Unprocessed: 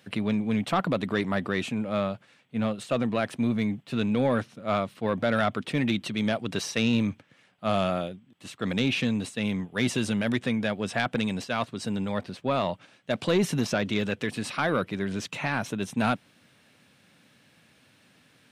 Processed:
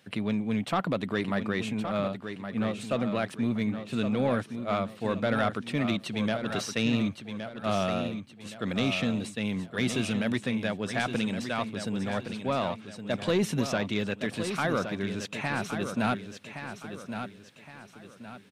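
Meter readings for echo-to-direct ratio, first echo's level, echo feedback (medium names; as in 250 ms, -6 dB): -8.0 dB, -8.5 dB, 37%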